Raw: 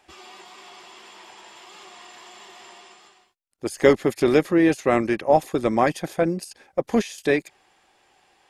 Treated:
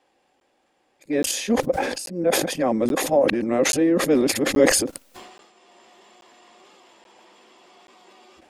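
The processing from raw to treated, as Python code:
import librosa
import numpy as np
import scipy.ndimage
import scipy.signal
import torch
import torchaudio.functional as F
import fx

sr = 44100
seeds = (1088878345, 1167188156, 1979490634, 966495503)

y = x[::-1].copy()
y = fx.small_body(y, sr, hz=(270.0, 510.0), ring_ms=25, db=12)
y = fx.transient(y, sr, attack_db=0, sustain_db=6)
y = fx.buffer_crackle(y, sr, first_s=0.4, period_s=0.83, block=512, kind='zero')
y = fx.sustainer(y, sr, db_per_s=50.0)
y = y * 10.0 ** (-10.0 / 20.0)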